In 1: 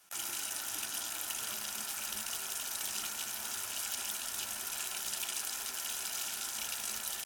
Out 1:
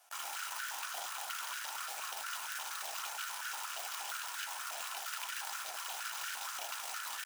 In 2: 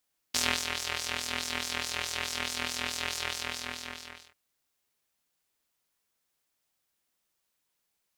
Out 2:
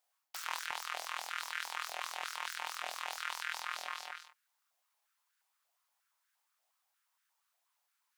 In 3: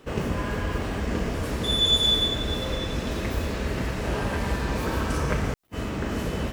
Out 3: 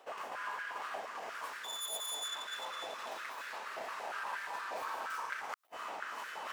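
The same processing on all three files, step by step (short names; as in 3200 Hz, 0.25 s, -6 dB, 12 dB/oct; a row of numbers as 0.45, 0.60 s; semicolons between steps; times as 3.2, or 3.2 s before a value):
tracing distortion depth 0.16 ms; reverse; compressor 6:1, threshold -34 dBFS; reverse; stepped high-pass 8.5 Hz 710–1500 Hz; gain -3 dB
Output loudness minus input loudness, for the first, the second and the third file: -3.5, -8.0, -14.5 LU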